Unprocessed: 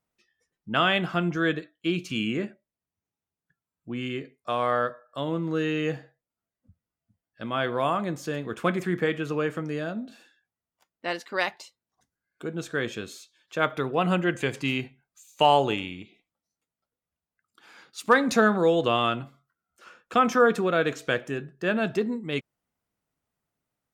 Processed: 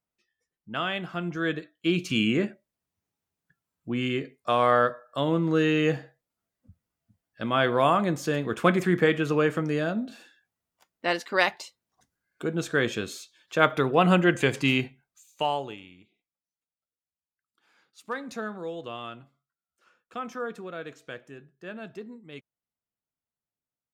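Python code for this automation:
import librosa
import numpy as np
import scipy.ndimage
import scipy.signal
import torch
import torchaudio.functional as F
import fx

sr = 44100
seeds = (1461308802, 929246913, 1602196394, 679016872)

y = fx.gain(x, sr, db=fx.line((1.1, -7.0), (2.09, 4.0), (14.8, 4.0), (15.44, -7.0), (15.78, -14.0)))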